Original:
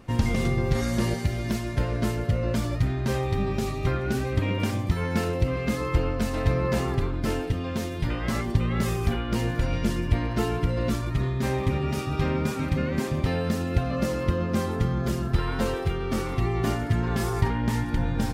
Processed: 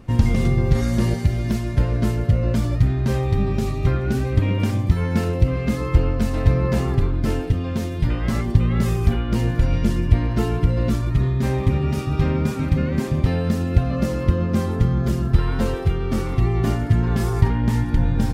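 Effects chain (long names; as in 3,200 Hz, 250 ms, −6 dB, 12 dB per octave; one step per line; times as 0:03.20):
low-shelf EQ 260 Hz +8.5 dB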